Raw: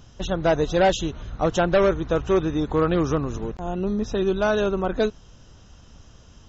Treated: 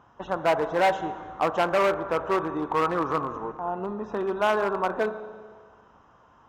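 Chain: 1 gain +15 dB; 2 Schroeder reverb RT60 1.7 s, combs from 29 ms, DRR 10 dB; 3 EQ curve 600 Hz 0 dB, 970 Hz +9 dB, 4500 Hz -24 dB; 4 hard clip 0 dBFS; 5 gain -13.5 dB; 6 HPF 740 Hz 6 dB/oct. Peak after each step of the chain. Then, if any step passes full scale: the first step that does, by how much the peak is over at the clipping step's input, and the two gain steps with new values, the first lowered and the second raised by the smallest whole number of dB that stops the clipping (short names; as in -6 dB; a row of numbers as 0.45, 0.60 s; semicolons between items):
+4.5, +6.0, +9.0, 0.0, -13.5, -10.5 dBFS; step 1, 9.0 dB; step 1 +6 dB, step 5 -4.5 dB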